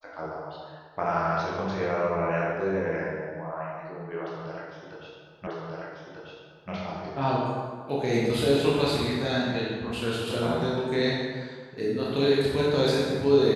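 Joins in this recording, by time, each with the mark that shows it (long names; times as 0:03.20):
0:05.47: the same again, the last 1.24 s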